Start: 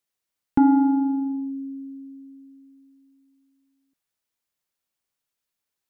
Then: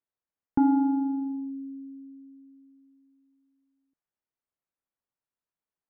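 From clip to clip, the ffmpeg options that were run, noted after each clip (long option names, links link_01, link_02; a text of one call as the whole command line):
ffmpeg -i in.wav -af "lowpass=1500,volume=-5dB" out.wav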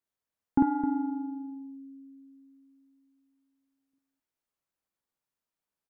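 ffmpeg -i in.wav -af "aecho=1:1:49.56|262.4:0.794|0.316" out.wav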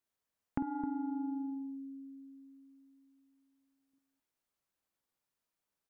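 ffmpeg -i in.wav -af "acompressor=threshold=-34dB:ratio=10,volume=1dB" out.wav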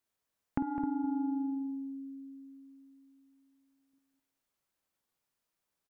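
ffmpeg -i in.wav -af "aecho=1:1:206:0.251,volume=2.5dB" out.wav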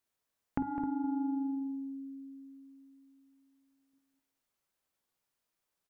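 ffmpeg -i in.wav -af "bandreject=frequency=50:width_type=h:width=6,bandreject=frequency=100:width_type=h:width=6,bandreject=frequency=150:width_type=h:width=6,bandreject=frequency=200:width_type=h:width=6,bandreject=frequency=250:width_type=h:width=6,bandreject=frequency=300:width_type=h:width=6" out.wav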